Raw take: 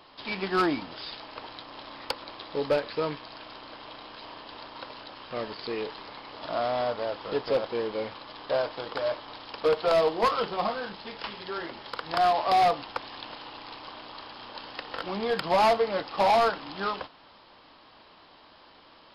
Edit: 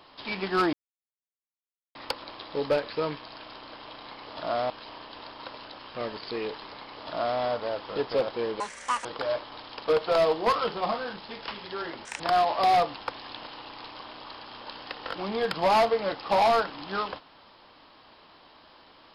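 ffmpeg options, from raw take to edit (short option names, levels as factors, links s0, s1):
-filter_complex "[0:a]asplit=9[s0][s1][s2][s3][s4][s5][s6][s7][s8];[s0]atrim=end=0.73,asetpts=PTS-STARTPTS,afade=t=out:st=0.726:d=0.004:c=hsin[s9];[s1]atrim=start=0.73:end=1.95,asetpts=PTS-STARTPTS,volume=0[s10];[s2]atrim=start=1.95:end=4.062,asetpts=PTS-STARTPTS,afade=t=in:d=0.004:c=hsin[s11];[s3]atrim=start=6.118:end=6.762[s12];[s4]atrim=start=4.058:end=7.964[s13];[s5]atrim=start=7.96:end=8.81,asetpts=PTS-STARTPTS,asetrate=83349,aresample=44100,atrim=end_sample=19833,asetpts=PTS-STARTPTS[s14];[s6]atrim=start=8.806:end=11.814[s15];[s7]atrim=start=11.81:end=12.08,asetpts=PTS-STARTPTS,asetrate=79821,aresample=44100,atrim=end_sample=6578,asetpts=PTS-STARTPTS[s16];[s8]atrim=start=12.076[s17];[s9][s10][s11]concat=n=3:v=0:a=1[s18];[s18][s12]acrossfade=d=0.004:c1=hsin:c2=hsin[s19];[s19][s13]acrossfade=d=0.004:c1=hsin:c2=hsin[s20];[s20][s14]acrossfade=d=0.004:c1=hsin:c2=hsin[s21];[s21][s15]acrossfade=d=0.004:c1=hsin:c2=hsin[s22];[s22][s16]acrossfade=d=0.004:c1=hsin:c2=hsin[s23];[s23][s17]acrossfade=d=0.004:c1=hsin:c2=hsin"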